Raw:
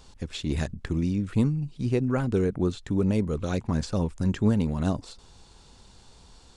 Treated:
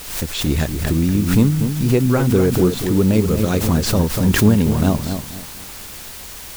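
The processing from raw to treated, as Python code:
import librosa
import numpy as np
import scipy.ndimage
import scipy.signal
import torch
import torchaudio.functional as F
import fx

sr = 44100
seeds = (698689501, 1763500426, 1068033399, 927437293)

p1 = fx.quant_dither(x, sr, seeds[0], bits=6, dither='triangular')
p2 = x + F.gain(torch.from_numpy(p1), -3.0).numpy()
p3 = fx.echo_filtered(p2, sr, ms=241, feedback_pct=29, hz=2000.0, wet_db=-7.5)
p4 = fx.pre_swell(p3, sr, db_per_s=72.0)
y = F.gain(torch.from_numpy(p4), 4.0).numpy()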